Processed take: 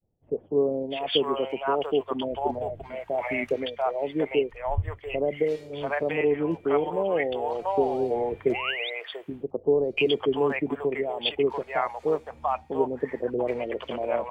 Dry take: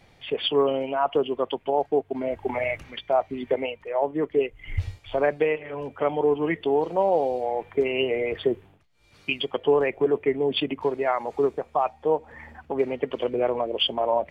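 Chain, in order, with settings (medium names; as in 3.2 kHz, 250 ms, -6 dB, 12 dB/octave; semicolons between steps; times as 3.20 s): expander -44 dBFS; painted sound rise, 7.80–8.21 s, 560–3900 Hz -33 dBFS; bands offset in time lows, highs 690 ms, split 640 Hz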